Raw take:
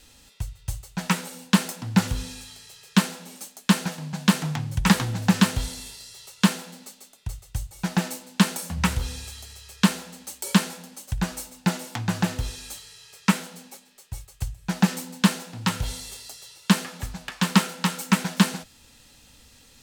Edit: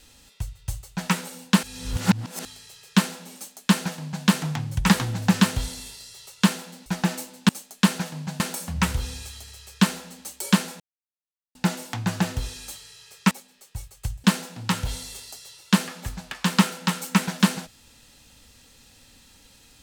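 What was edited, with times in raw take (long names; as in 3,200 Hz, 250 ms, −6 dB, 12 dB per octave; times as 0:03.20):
0:01.63–0:02.45: reverse
0:03.35–0:04.26: duplicate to 0:08.42
0:06.86–0:07.79: remove
0:10.82–0:11.57: silence
0:13.33–0:13.68: remove
0:14.61–0:15.21: remove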